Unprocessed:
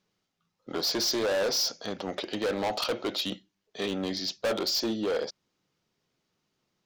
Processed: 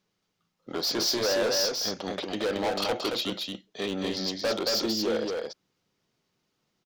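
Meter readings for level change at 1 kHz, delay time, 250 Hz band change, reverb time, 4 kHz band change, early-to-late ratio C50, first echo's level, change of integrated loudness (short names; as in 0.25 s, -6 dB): +1.5 dB, 0.225 s, +1.5 dB, none, +1.5 dB, none, -3.5 dB, +1.5 dB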